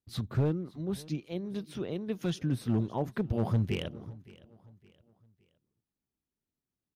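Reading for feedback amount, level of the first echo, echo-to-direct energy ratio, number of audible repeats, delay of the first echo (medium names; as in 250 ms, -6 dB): 39%, -21.5 dB, -21.0 dB, 2, 565 ms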